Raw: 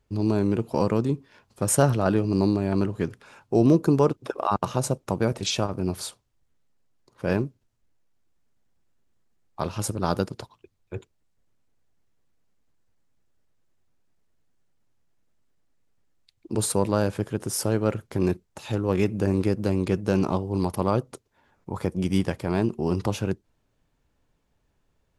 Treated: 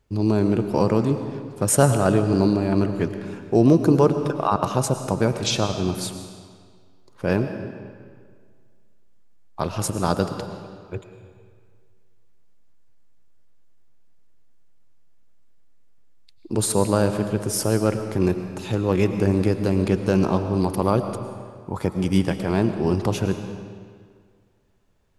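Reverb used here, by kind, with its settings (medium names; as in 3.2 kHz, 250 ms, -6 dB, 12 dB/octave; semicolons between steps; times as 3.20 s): algorithmic reverb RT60 1.9 s, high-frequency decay 0.85×, pre-delay 70 ms, DRR 8 dB; trim +3 dB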